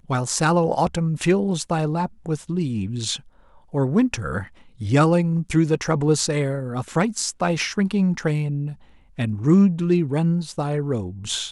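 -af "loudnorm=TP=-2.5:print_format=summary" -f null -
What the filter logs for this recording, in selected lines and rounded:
Input Integrated:    -22.0 LUFS
Input True Peak:      -3.8 dBTP
Input LRA:             2.4 LU
Input Threshold:     -32.3 LUFS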